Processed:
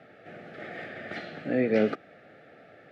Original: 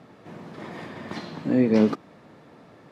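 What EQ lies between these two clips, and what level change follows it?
Butterworth band-stop 1 kHz, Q 1.6; three-band isolator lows -15 dB, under 530 Hz, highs -18 dB, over 2.8 kHz; peaking EQ 100 Hz +3 dB 1.2 oct; +5.0 dB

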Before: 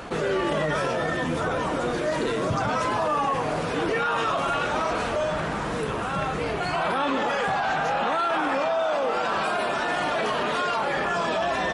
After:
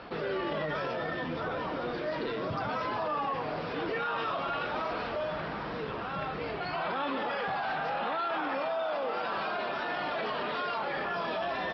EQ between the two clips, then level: steep low-pass 5.3 kHz 96 dB/octave; bass shelf 120 Hz -5.5 dB; -7.5 dB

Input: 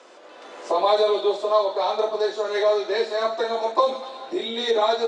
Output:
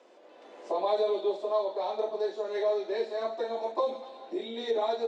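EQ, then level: brick-wall FIR high-pass 150 Hz; peaking EQ 1.3 kHz -8 dB 0.75 oct; treble shelf 2.8 kHz -10.5 dB; -6.5 dB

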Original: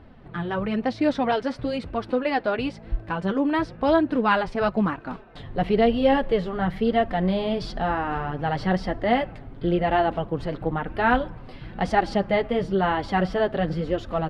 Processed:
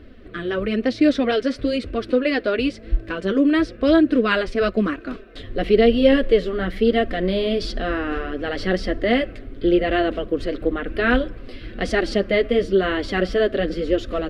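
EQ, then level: static phaser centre 360 Hz, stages 4; +7.5 dB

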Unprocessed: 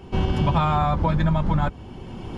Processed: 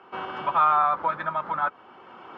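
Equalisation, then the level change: band-pass 590–2400 Hz; peaking EQ 1.3 kHz +12 dB 0.55 oct; -2.5 dB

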